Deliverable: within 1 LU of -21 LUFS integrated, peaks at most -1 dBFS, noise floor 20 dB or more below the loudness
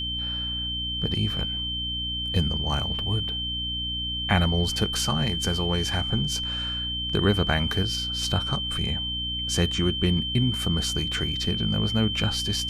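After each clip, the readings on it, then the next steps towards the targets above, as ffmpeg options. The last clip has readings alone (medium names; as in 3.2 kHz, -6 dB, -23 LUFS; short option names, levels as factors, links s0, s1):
hum 60 Hz; highest harmonic 300 Hz; hum level -33 dBFS; steady tone 3.1 kHz; tone level -28 dBFS; loudness -25.0 LUFS; peak level -8.5 dBFS; loudness target -21.0 LUFS
-> -af "bandreject=f=60:t=h:w=4,bandreject=f=120:t=h:w=4,bandreject=f=180:t=h:w=4,bandreject=f=240:t=h:w=4,bandreject=f=300:t=h:w=4"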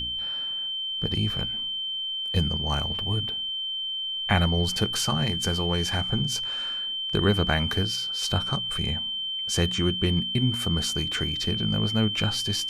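hum not found; steady tone 3.1 kHz; tone level -28 dBFS
-> -af "bandreject=f=3100:w=30"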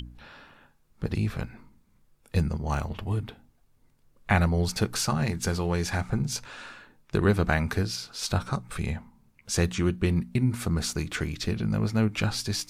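steady tone not found; loudness -28.0 LUFS; peak level -9.0 dBFS; loudness target -21.0 LUFS
-> -af "volume=2.24"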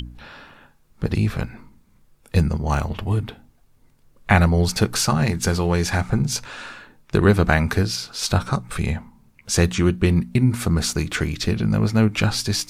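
loudness -21.0 LUFS; peak level -2.0 dBFS; noise floor -57 dBFS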